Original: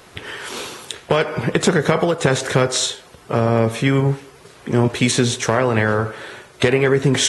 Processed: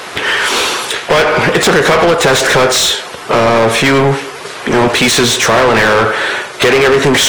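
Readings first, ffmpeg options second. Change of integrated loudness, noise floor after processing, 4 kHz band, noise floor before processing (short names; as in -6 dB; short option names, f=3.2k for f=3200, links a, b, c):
+8.5 dB, -27 dBFS, +12.0 dB, -46 dBFS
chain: -filter_complex "[0:a]asplit=2[a][b];[b]highpass=f=720:p=1,volume=29dB,asoftclip=type=tanh:threshold=-1.5dB[c];[a][c]amix=inputs=2:normalize=0,lowpass=f=4.7k:p=1,volume=-6dB"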